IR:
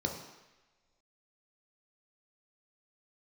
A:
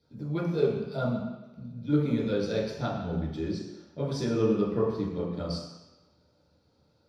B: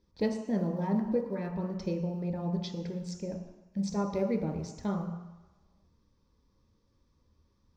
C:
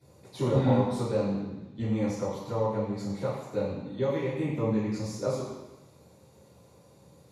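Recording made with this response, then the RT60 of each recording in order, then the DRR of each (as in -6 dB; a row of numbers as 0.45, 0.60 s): B; not exponential, not exponential, not exponential; -7.0, 1.5, -16.0 dB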